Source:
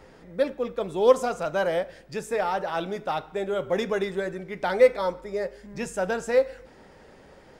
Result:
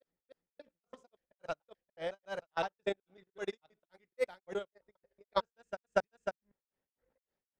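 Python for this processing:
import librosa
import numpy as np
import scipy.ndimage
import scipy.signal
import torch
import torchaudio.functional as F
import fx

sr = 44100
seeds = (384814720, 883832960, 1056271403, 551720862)

y = fx.block_reorder(x, sr, ms=140.0, group=5)
y = fx.high_shelf(y, sr, hz=3300.0, db=11.0)
y = fx.env_lowpass(y, sr, base_hz=1700.0, full_db=-16.5)
y = fx.level_steps(y, sr, step_db=9)
y = fx.transient(y, sr, attack_db=7, sustain_db=-11)
y = fx.granulator(y, sr, seeds[0], grain_ms=252.0, per_s=3.6, spray_ms=502.0, spread_st=0)
y = fx.upward_expand(y, sr, threshold_db=-37.0, expansion=2.5)
y = F.gain(torch.from_numpy(y), -1.5).numpy()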